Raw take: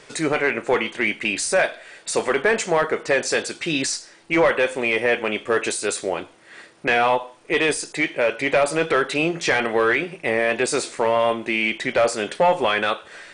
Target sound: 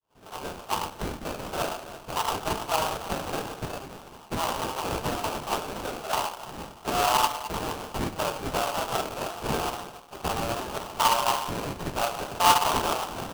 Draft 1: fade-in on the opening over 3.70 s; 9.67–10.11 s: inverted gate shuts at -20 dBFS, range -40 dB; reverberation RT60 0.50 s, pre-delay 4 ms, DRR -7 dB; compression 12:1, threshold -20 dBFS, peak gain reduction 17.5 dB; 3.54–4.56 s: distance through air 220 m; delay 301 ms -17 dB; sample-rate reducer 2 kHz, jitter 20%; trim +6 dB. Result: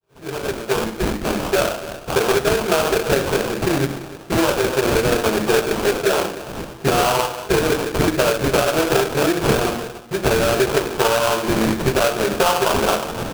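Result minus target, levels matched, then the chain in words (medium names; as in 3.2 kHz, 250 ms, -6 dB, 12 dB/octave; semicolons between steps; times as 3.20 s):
1 kHz band -6.0 dB
fade-in on the opening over 3.70 s; 9.67–10.11 s: inverted gate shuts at -20 dBFS, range -40 dB; reverberation RT60 0.50 s, pre-delay 4 ms, DRR -7 dB; compression 12:1, threshold -20 dBFS, peak gain reduction 17.5 dB; ladder high-pass 770 Hz, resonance 70%; 3.54–4.56 s: distance through air 220 m; delay 301 ms -17 dB; sample-rate reducer 2 kHz, jitter 20%; trim +6 dB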